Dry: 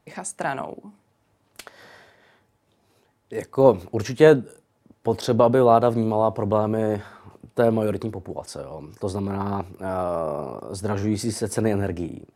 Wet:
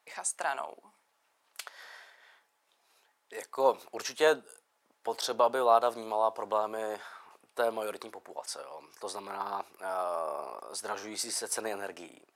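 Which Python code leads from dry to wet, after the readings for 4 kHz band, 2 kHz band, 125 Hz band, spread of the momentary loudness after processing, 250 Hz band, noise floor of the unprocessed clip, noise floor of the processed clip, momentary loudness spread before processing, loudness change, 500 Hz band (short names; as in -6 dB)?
-1.0 dB, -4.5 dB, under -30 dB, 18 LU, -21.5 dB, -67 dBFS, -75 dBFS, 17 LU, -9.5 dB, -10.5 dB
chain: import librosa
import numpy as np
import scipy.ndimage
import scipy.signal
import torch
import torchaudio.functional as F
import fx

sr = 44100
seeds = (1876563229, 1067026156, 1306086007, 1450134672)

y = scipy.signal.sosfilt(scipy.signal.butter(2, 940.0, 'highpass', fs=sr, output='sos'), x)
y = fx.dynamic_eq(y, sr, hz=2000.0, q=1.7, threshold_db=-47.0, ratio=4.0, max_db=-7)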